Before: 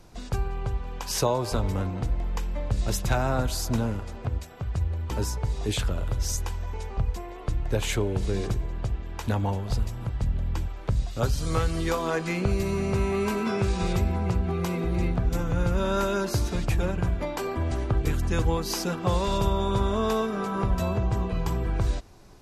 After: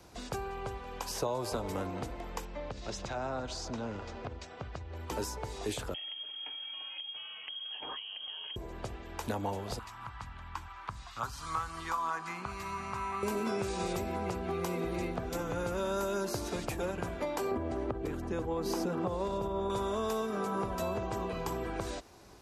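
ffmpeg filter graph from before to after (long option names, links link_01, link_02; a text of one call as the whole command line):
ffmpeg -i in.wav -filter_complex "[0:a]asettb=1/sr,asplit=3[link_01][link_02][link_03];[link_01]atrim=end=2.454[link_04];[link_02]atrim=start=2.45:end=4.95,asetpts=PTS-STARTPTS,afade=type=in:duration=0.004:curve=qsin,afade=type=out:start_time=2.496:duration=0.004:curve=qsin,lowpass=frequency=6300:width=0.5412,lowpass=frequency=6300:width=1.3066,acompressor=threshold=-28dB:ratio=4:attack=3.2:release=140:knee=1:detection=peak[link_05];[link_03]atrim=start=4.946[link_06];[link_04][link_05]acrossfade=duration=0.004:curve1=hsin:curve2=qsin[link_07];[link_07][link_06]acrossfade=duration=0.004:curve1=qsin:curve2=hsin,asettb=1/sr,asplit=3[link_08][link_09][link_10];[link_08]atrim=end=5.944[link_11];[link_09]atrim=start=5.94:end=8.56,asetpts=PTS-STARTPTS,afade=type=in:duration=0.004:curve=qsin,afade=type=out:start_time=2.616:duration=0.004:curve=qsin,aecho=1:1:6.3:0.41,atrim=end_sample=115542,acompressor=threshold=-29dB:ratio=4:attack=3.2:release=140:knee=1:detection=peak,lowpass=frequency=2800:width_type=q:width=0.5098,lowpass=frequency=2800:width_type=q:width=0.6013,lowpass=frequency=2800:width_type=q:width=0.9,lowpass=frequency=2800:width_type=q:width=2.563,afreqshift=-3300[link_12];[link_10]atrim=start=8.556[link_13];[link_11][link_12]acrossfade=duration=0.004:curve1=hsin:curve2=qsin[link_14];[link_14][link_13]acrossfade=duration=0.004:curve1=qsin:curve2=hsin,asettb=1/sr,asplit=3[link_15][link_16][link_17];[link_15]atrim=end=9.794[link_18];[link_16]atrim=start=9.79:end=13.23,asetpts=PTS-STARTPTS,afade=type=in:duration=0.004:curve=qsin,afade=type=out:start_time=3.436:duration=0.004:curve=qsin,lowpass=frequency=3200:poles=1,lowshelf=frequency=740:width_type=q:width=3:gain=-12.5[link_19];[link_17]atrim=start=13.226[link_20];[link_18][link_19]acrossfade=duration=0.004:curve1=hsin:curve2=qsin[link_21];[link_21][link_20]acrossfade=duration=0.004:curve1=qsin:curve2=hsin,asettb=1/sr,asplit=3[link_22][link_23][link_24];[link_22]atrim=end=17.514[link_25];[link_23]atrim=start=17.51:end=19.7,asetpts=PTS-STARTPTS,afade=type=in:duration=0.004:curve=qsin,afade=type=out:start_time=2.186:duration=0.004:curve=qsin,tiltshelf=frequency=1300:gain=9,acompressor=threshold=-21dB:ratio=4:attack=3.2:release=140:knee=1:detection=peak[link_26];[link_24]atrim=start=19.696[link_27];[link_25][link_26]acrossfade=duration=0.004:curve1=hsin:curve2=qsin[link_28];[link_28][link_27]acrossfade=duration=0.004:curve1=qsin:curve2=hsin,highpass=62,equalizer=frequency=140:width_type=o:width=1.5:gain=-6,acrossover=split=200|1100|6100[link_29][link_30][link_31][link_32];[link_29]acompressor=threshold=-44dB:ratio=4[link_33];[link_30]acompressor=threshold=-32dB:ratio=4[link_34];[link_31]acompressor=threshold=-45dB:ratio=4[link_35];[link_32]acompressor=threshold=-45dB:ratio=4[link_36];[link_33][link_34][link_35][link_36]amix=inputs=4:normalize=0" out.wav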